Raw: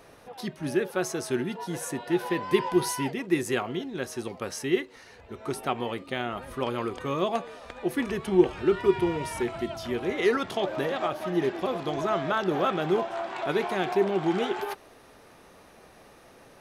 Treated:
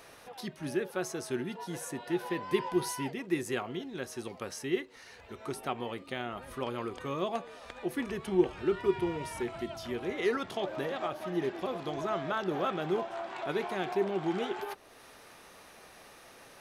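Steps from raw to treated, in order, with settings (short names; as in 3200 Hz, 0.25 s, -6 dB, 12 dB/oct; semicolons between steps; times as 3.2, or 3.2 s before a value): mismatched tape noise reduction encoder only; gain -6 dB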